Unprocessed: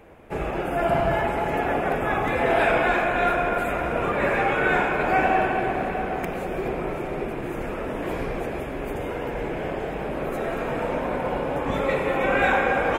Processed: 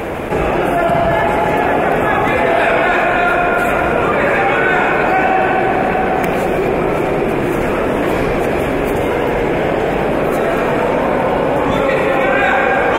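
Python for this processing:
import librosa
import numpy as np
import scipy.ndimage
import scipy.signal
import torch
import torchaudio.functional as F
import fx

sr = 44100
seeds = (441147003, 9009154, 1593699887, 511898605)

y = fx.low_shelf(x, sr, hz=64.0, db=-8.5)
y = fx.env_flatten(y, sr, amount_pct=70)
y = F.gain(torch.from_numpy(y), 6.0).numpy()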